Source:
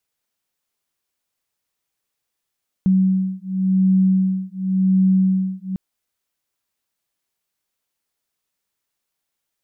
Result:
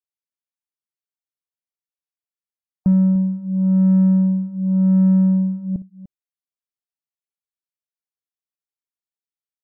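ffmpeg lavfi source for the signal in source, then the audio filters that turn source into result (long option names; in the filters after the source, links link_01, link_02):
-f lavfi -i "aevalsrc='0.133*(sin(2*PI*188*t)+sin(2*PI*188.91*t))':duration=2.9:sample_rate=44100"
-filter_complex "[0:a]afftdn=noise_reduction=26:noise_floor=-44,asplit=2[link_01][link_02];[link_02]asoftclip=type=tanh:threshold=-22.5dB,volume=-4dB[link_03];[link_01][link_03]amix=inputs=2:normalize=0,aecho=1:1:60|296:0.133|0.158"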